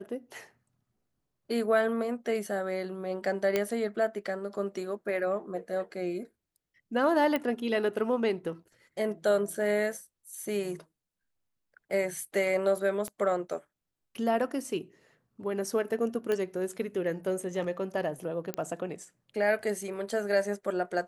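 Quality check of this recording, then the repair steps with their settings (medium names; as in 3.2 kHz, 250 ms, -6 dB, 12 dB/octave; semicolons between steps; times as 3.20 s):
3.56 s: pop -13 dBFS
7.36 s: pop -16 dBFS
13.08 s: pop -24 dBFS
16.32 s: pop -18 dBFS
18.54 s: pop -17 dBFS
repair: de-click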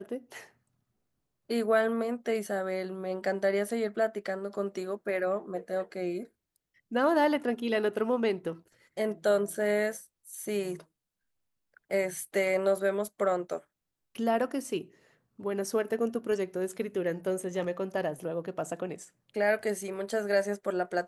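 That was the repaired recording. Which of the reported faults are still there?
13.08 s: pop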